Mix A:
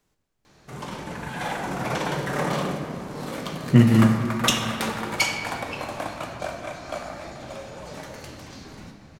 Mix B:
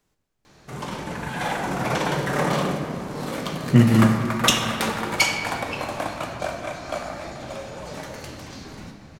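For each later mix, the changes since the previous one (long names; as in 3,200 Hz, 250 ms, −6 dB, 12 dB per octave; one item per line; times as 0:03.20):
background +3.0 dB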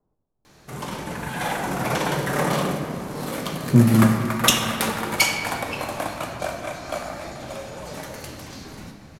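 speech: add low-pass filter 1,000 Hz 24 dB per octave
background: add parametric band 12,000 Hz +9 dB 0.74 octaves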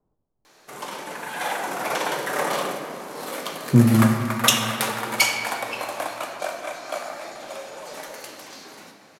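background: add high-pass filter 410 Hz 12 dB per octave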